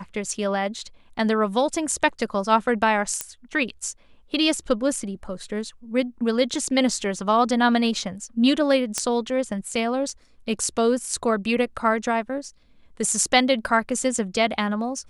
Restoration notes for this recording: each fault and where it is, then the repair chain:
3.21 pop -8 dBFS
8.98 pop -9 dBFS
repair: de-click

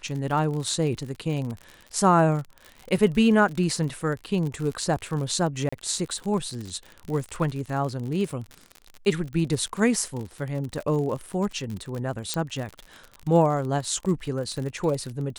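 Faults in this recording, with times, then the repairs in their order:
crackle 56/s -31 dBFS
5.69–5.72 gap 35 ms
12.34 pop -11 dBFS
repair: de-click; interpolate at 5.69, 35 ms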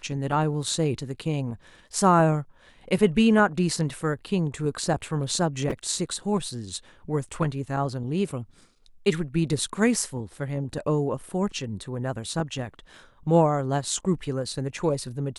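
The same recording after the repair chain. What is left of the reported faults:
none

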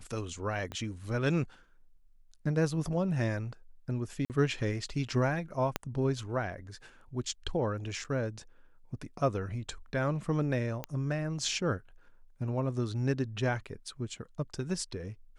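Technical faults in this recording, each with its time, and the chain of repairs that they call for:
0.72 pop -25 dBFS
4.25–4.3 gap 48 ms
5.76 pop -14 dBFS
8.04–8.05 gap 6.2 ms
10.84 pop -20 dBFS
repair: de-click; interpolate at 4.25, 48 ms; interpolate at 8.04, 6.2 ms

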